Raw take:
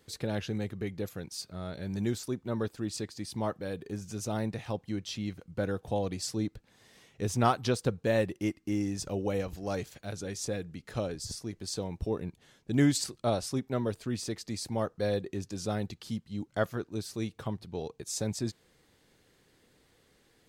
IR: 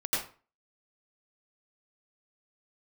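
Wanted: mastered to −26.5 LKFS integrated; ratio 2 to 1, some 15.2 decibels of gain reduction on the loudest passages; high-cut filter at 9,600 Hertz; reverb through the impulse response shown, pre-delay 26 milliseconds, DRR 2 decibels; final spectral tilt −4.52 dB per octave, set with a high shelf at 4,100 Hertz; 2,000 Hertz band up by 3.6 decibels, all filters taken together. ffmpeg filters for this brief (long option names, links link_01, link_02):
-filter_complex "[0:a]lowpass=9600,equalizer=frequency=2000:width_type=o:gain=4,highshelf=frequency=4100:gain=3,acompressor=threshold=-48dB:ratio=2,asplit=2[link_01][link_02];[1:a]atrim=start_sample=2205,adelay=26[link_03];[link_02][link_03]afir=irnorm=-1:irlink=0,volume=-10dB[link_04];[link_01][link_04]amix=inputs=2:normalize=0,volume=16dB"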